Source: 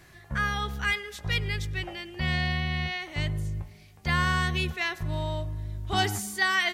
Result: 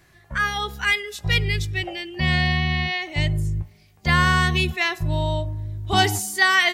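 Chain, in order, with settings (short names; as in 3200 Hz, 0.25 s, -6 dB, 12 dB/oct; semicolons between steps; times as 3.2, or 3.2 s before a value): spectral noise reduction 10 dB; gain +7.5 dB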